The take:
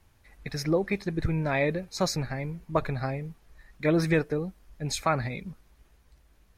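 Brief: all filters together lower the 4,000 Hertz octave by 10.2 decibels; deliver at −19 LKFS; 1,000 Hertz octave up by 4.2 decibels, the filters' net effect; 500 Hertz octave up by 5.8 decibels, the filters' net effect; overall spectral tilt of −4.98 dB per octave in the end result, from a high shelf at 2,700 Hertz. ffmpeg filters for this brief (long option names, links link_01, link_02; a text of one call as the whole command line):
ffmpeg -i in.wav -af "equalizer=frequency=500:width_type=o:gain=6,equalizer=frequency=1000:width_type=o:gain=5,highshelf=frequency=2700:gain=-7,equalizer=frequency=4000:width_type=o:gain=-6.5,volume=7dB" out.wav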